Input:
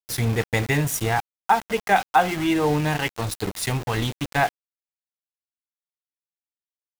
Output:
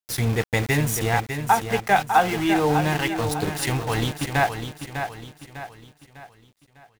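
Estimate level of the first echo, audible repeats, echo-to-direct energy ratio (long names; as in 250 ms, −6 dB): −8.0 dB, 4, −7.0 dB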